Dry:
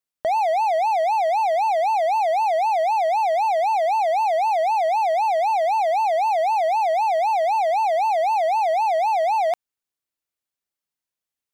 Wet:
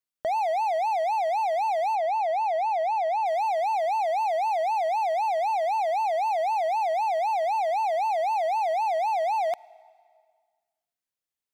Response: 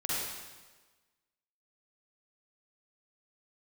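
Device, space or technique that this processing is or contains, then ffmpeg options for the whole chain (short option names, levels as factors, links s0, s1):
ducked reverb: -filter_complex "[0:a]asplit=3[s0][s1][s2];[1:a]atrim=start_sample=2205[s3];[s1][s3]afir=irnorm=-1:irlink=0[s4];[s2]apad=whole_len=508588[s5];[s4][s5]sidechaincompress=threshold=0.02:ratio=10:attack=16:release=776,volume=0.224[s6];[s0][s6]amix=inputs=2:normalize=0,asettb=1/sr,asplit=3[s7][s8][s9];[s7]atrim=end=1.954[s10];[s8]atrim=start=1.95:end=3.26,asetpts=PTS-STARTPTS,afade=t=in:d=0.004:c=qsin,afade=t=out:st=1.306:d=0.004:c=qsin,highshelf=f=5600:g=-11.5[s11];[s9]atrim=start=3.256[s12];[s10][s11]acrossfade=d=0.004:c1=hsin:c2=qsin[s13];[s13][s12]acrossfade=d=0.004:c1=qsin:c2=hsin,volume=0.531"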